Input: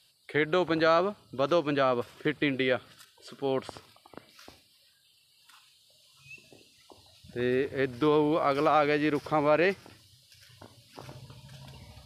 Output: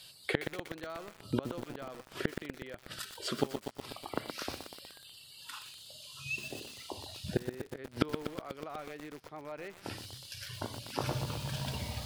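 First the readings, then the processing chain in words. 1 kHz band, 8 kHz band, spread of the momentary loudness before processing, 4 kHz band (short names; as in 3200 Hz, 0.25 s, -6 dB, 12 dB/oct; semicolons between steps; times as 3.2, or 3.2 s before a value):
-13.0 dB, n/a, 9 LU, -2.0 dB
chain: flipped gate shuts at -26 dBFS, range -31 dB; lo-fi delay 0.122 s, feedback 80%, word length 9-bit, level -7 dB; gain +11 dB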